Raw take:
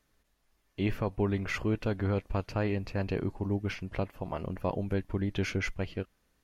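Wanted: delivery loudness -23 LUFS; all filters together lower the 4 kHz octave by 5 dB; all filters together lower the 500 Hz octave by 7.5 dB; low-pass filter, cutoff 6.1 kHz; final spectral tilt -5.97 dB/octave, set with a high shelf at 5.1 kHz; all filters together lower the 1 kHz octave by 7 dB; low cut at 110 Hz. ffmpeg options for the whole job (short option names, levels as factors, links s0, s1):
-af "highpass=110,lowpass=6100,equalizer=f=500:t=o:g=-8.5,equalizer=f=1000:t=o:g=-6,equalizer=f=4000:t=o:g=-8.5,highshelf=f=5100:g=6,volume=5.01"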